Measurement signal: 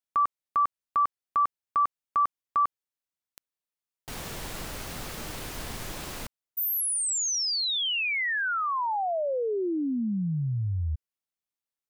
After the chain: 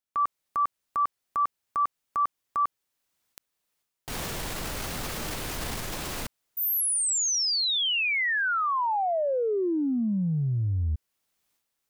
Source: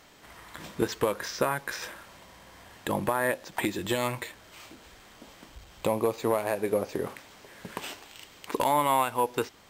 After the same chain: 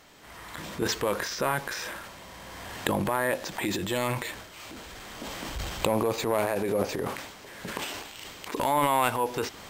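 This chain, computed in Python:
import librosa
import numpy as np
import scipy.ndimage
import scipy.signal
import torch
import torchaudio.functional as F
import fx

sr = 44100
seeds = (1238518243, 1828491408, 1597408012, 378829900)

y = fx.recorder_agc(x, sr, target_db=-23.0, rise_db_per_s=12.0, max_gain_db=30)
y = fx.transient(y, sr, attack_db=-4, sustain_db=9)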